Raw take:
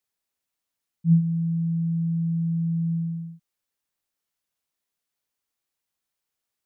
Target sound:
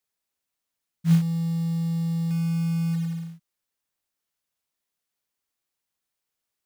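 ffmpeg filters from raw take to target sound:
-filter_complex "[0:a]asettb=1/sr,asplit=3[a][b][c];[a]atrim=end=1.074[d];[b]atrim=start=1.07:end=2.31,asetpts=PTS-STARTPTS,afade=t=in:d=0.004:c=qsin,afade=t=out:st=1.236:d=0.004:c=qsin,equalizer=f=230:t=o:w=0.45:g=-3[e];[c]atrim=start=2.306[f];[d][e]acrossfade=d=0.004:c1=hsin:c2=qsin[g];[g][f]acrossfade=d=0.004:c1=qsin:c2=hsin,acrusher=bits=5:mode=log:mix=0:aa=0.000001"

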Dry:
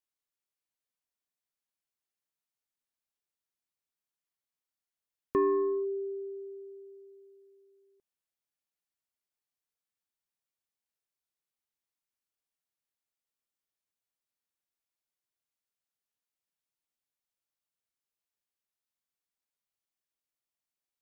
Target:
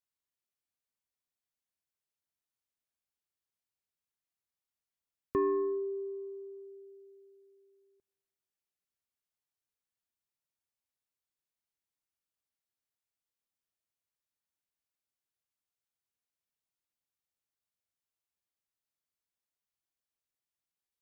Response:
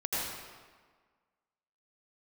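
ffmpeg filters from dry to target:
-filter_complex "[0:a]equalizer=f=81:w=0.78:g=6,asplit=2[a][b];[1:a]atrim=start_sample=2205[c];[b][c]afir=irnorm=-1:irlink=0,volume=-29.5dB[d];[a][d]amix=inputs=2:normalize=0,volume=-3.5dB"

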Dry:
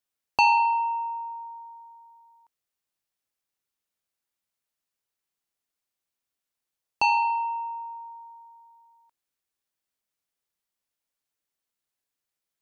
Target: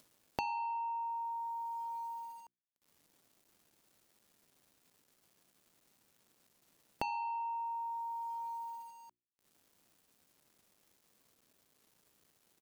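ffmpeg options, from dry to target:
-af "aresample=32000,aresample=44100,acompressor=mode=upward:threshold=-40dB:ratio=2.5,agate=range=-11dB:threshold=-48dB:ratio=16:detection=peak,equalizer=f=2.1k:t=o:w=0.48:g=-6.5,acrusher=bits=10:mix=0:aa=0.000001,equalizer=f=220:t=o:w=2.8:g=10.5,bandreject=f=60:t=h:w=6,bandreject=f=120:t=h:w=6,bandreject=f=180:t=h:w=6,bandreject=f=240:t=h:w=6,bandreject=f=300:t=h:w=6,bandreject=f=360:t=h:w=6,acompressor=threshold=-43dB:ratio=5,volume=4dB"

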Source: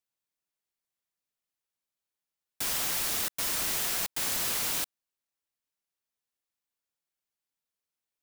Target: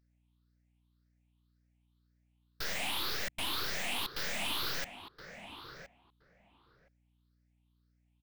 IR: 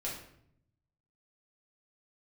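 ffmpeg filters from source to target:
-filter_complex "[0:a]afftfilt=real='re*pow(10,18/40*sin(2*PI*(0.57*log(max(b,1)*sr/1024/100)/log(2)-(1.9)*(pts-256)/sr)))':imag='im*pow(10,18/40*sin(2*PI*(0.57*log(max(b,1)*sr/1024/100)/log(2)-(1.9)*(pts-256)/sr)))':win_size=1024:overlap=0.75,asplit=2[a][b];[b]adelay=1020,lowpass=f=1.5k:p=1,volume=-12dB,asplit=2[c][d];[d]adelay=1020,lowpass=f=1.5k:p=1,volume=0.16[e];[c][e]amix=inputs=2:normalize=0[f];[a][f]amix=inputs=2:normalize=0,aeval=exprs='(tanh(39.8*val(0)+0.65)-tanh(0.65))/39.8':c=same,highshelf=f=5.3k:t=q:w=1.5:g=-10.5,aeval=exprs='val(0)+0.0002*(sin(2*PI*60*n/s)+sin(2*PI*2*60*n/s)/2+sin(2*PI*3*60*n/s)/3+sin(2*PI*4*60*n/s)/4+sin(2*PI*5*60*n/s)/5)':c=same,volume=2.5dB"

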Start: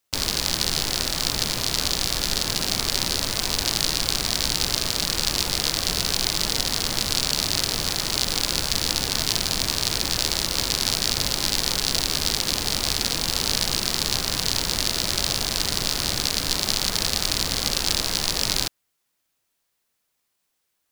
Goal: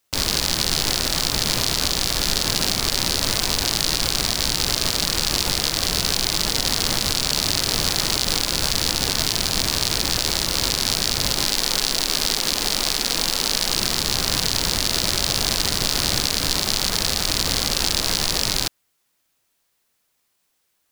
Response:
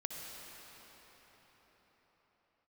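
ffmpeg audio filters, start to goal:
-filter_complex "[0:a]asettb=1/sr,asplit=3[a][b][c];[a]atrim=end=11.454[d];[b]atrim=start=11.45:end=13.76,asetpts=PTS-STARTPTS,afade=t=in:d=0.004:c=qsin,afade=t=out:st=2.306:d=0.004:c=qsin,equalizer=f=83:w=0.92:g=-12.5[e];[c]atrim=start=13.756[f];[d][e]acrossfade=d=0.004:c1=hsin:c2=qsin[g];[g][f]acrossfade=d=0.004:c1=qsin:c2=hsin,alimiter=level_in=6dB:limit=-1dB:release=50:level=0:latency=1,volume=-1dB"

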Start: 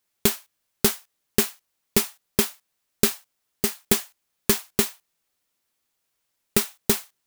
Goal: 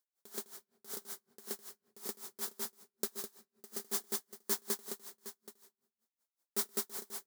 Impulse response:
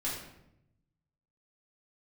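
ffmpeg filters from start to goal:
-filter_complex "[0:a]highpass=320,equalizer=f=2.6k:t=o:w=0.75:g=-12.5,alimiter=limit=-10.5dB:level=0:latency=1:release=30,aecho=1:1:90|125|206|688|764:0.158|0.398|0.668|0.119|0.188,asplit=2[a][b];[1:a]atrim=start_sample=2205[c];[b][c]afir=irnorm=-1:irlink=0,volume=-19dB[d];[a][d]amix=inputs=2:normalize=0,aeval=exprs='val(0)*pow(10,-29*(0.5-0.5*cos(2*PI*5.3*n/s))/20)':c=same,volume=-6.5dB"

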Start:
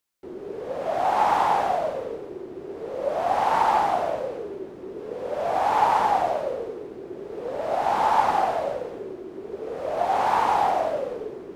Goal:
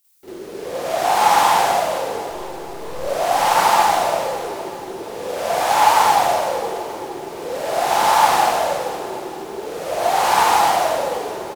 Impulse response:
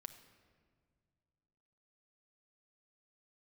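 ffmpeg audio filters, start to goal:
-filter_complex "[0:a]crystalizer=i=7:c=0,asettb=1/sr,asplit=3[a][b][c];[a]atrim=end=2.264[d];[b]atrim=start=2.26:end=3.03,asetpts=PTS-STARTPTS,afade=t=in:d=0.004:c=qsin,afade=t=out:st=0.766:d=0.004:c=qsin,aeval=exprs='clip(val(0),-1,0.0075)':c=same[e];[c]atrim=start=3.026[f];[d][e]acrossfade=d=0.004:c1=hsin:c2=qsin[g];[g][f]acrossfade=d=0.004:c1=qsin:c2=hsin,aecho=1:1:468|936|1404|1872|2340:0.2|0.102|0.0519|0.0265|0.0135,asplit=2[h][i];[1:a]atrim=start_sample=2205,adelay=46[j];[i][j]afir=irnorm=-1:irlink=0,volume=12.5dB[k];[h][k]amix=inputs=2:normalize=0,volume=-5dB"

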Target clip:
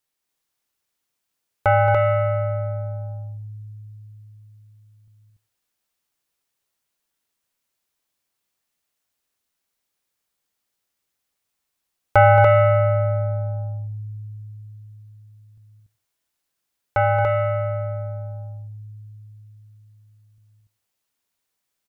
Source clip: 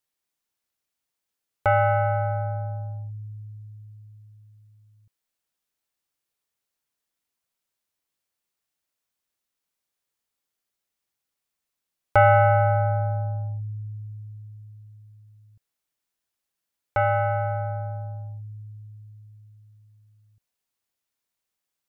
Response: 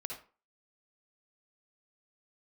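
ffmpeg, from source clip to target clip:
-filter_complex "[0:a]aecho=1:1:224.5|288.6:0.316|0.708,asplit=2[a][b];[1:a]atrim=start_sample=2205,adelay=19[c];[b][c]afir=irnorm=-1:irlink=0,volume=-15dB[d];[a][d]amix=inputs=2:normalize=0,volume=3dB"

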